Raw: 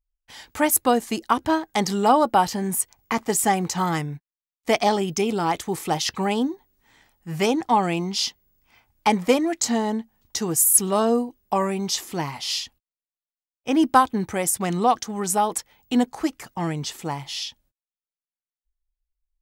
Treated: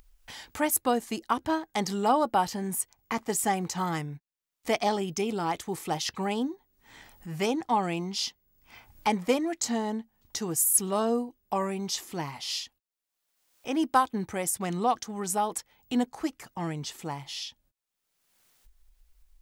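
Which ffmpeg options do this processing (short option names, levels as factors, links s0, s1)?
-filter_complex "[0:a]asettb=1/sr,asplit=3[s0][s1][s2];[s0]atrim=end=12.544[s3];[s1]atrim=start=12.54:end=14.14,asetpts=PTS-STARTPTS,afade=t=in:d=0.004:c=qsin,afade=t=out:st=1.596:d=0.004:c=qsin,bass=f=250:g=-6,treble=f=4000:g=1[s4];[s2]atrim=start=14.136[s5];[s3][s4]acrossfade=d=0.004:c1=hsin:c2=qsin[s6];[s6][s5]acrossfade=d=0.004:c1=qsin:c2=hsin,acompressor=mode=upward:threshold=0.0316:ratio=2.5,volume=0.473"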